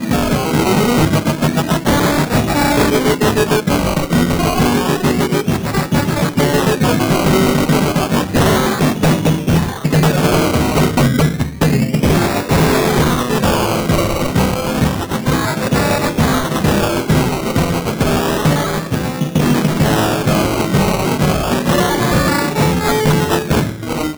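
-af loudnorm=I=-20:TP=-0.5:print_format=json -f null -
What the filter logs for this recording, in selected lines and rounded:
"input_i" : "-14.7",
"input_tp" : "-4.0",
"input_lra" : "1.6",
"input_thresh" : "-24.7",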